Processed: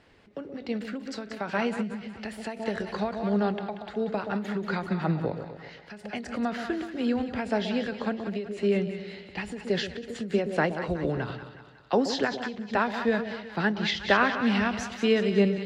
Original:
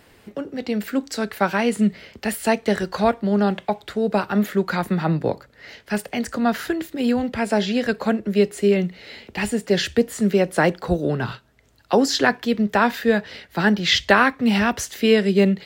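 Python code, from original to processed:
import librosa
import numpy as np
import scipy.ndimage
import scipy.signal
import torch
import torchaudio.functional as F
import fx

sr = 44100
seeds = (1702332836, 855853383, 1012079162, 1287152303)

y = scipy.signal.sosfilt(scipy.signal.butter(2, 4900.0, 'lowpass', fs=sr, output='sos'), x)
y = fx.echo_split(y, sr, split_hz=790.0, low_ms=125, high_ms=184, feedback_pct=52, wet_db=-9.5)
y = fx.end_taper(y, sr, db_per_s=120.0)
y = y * 10.0 ** (-6.5 / 20.0)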